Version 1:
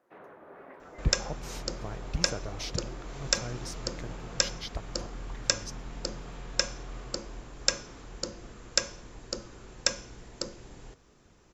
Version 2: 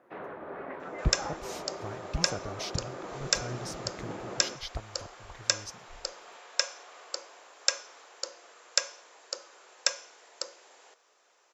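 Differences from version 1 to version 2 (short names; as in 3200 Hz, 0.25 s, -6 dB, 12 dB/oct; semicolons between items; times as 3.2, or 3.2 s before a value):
first sound +9.0 dB; second sound: add HPF 540 Hz 24 dB/oct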